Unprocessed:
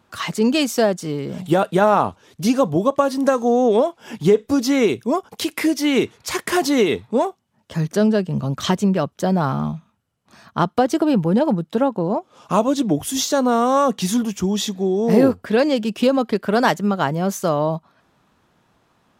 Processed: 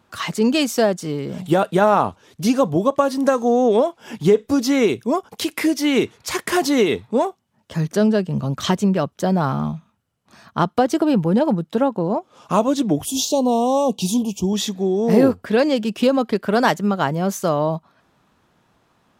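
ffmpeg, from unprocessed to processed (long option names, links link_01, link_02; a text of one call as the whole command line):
ffmpeg -i in.wav -filter_complex "[0:a]asettb=1/sr,asplit=3[link_01][link_02][link_03];[link_01]atrim=end=13.054[link_04];[link_02]atrim=start=13.05:end=14.53,asetpts=PTS-STARTPTS,afade=type=in:duration=0.004:curve=qsin,afade=type=out:start_time=1.476:duration=0.004:curve=qsin,asuperstop=centerf=1600:order=8:qfactor=1[link_05];[link_03]atrim=start=14.526[link_06];[link_04][link_05]acrossfade=duration=0.004:curve1=hsin:curve2=qsin[link_07];[link_07][link_06]acrossfade=duration=0.004:curve1=qsin:curve2=hsin" out.wav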